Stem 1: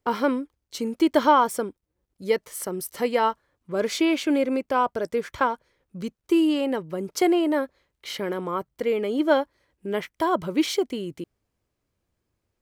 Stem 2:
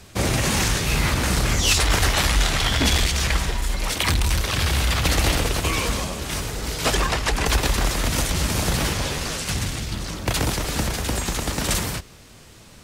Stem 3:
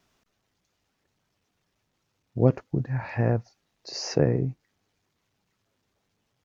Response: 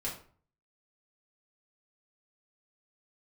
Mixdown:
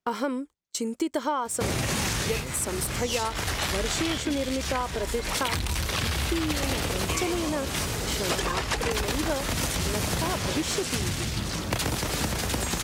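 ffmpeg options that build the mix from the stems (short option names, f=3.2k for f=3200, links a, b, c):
-filter_complex "[0:a]agate=range=-27dB:threshold=-40dB:ratio=16:detection=peak,equalizer=f=7.7k:t=o:w=0.69:g=12.5,volume=-1dB[a];[1:a]highpass=63,adelay=1450,volume=1dB[b];[2:a]volume=-19dB,asplit=2[c][d];[d]apad=whole_len=630039[e];[b][e]sidechaincompress=threshold=-42dB:ratio=8:attack=6.1:release=1480[f];[a][f][c]amix=inputs=3:normalize=0,acompressor=threshold=-24dB:ratio=6"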